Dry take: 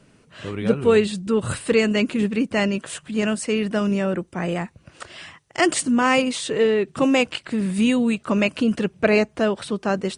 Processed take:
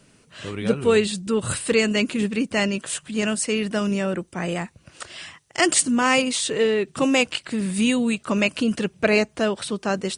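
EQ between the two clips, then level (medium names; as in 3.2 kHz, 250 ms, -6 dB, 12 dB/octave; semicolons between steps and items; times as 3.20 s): treble shelf 3.2 kHz +9 dB; -2.0 dB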